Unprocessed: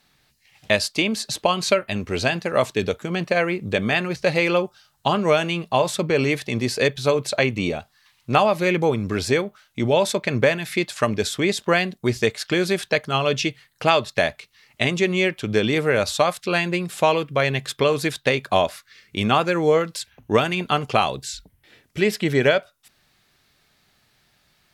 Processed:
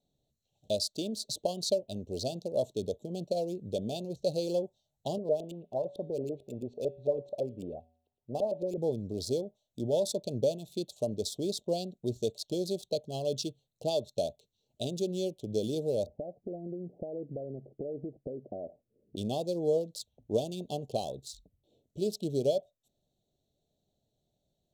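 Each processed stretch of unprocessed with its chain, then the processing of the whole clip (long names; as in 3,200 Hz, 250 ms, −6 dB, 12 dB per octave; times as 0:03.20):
0:05.18–0:08.78: auto-filter low-pass saw up 9 Hz 410–2,800 Hz + tuned comb filter 81 Hz, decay 0.63 s, harmonics odd, mix 50%
0:16.06–0:19.16: parametric band 300 Hz +11.5 dB 1.9 octaves + downward compressor 12 to 1, threshold −23 dBFS + Butterworth low-pass 810 Hz 48 dB per octave
whole clip: adaptive Wiener filter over 9 samples; elliptic band-stop filter 630–4,100 Hz, stop band 60 dB; low-shelf EQ 500 Hz −7 dB; level −5.5 dB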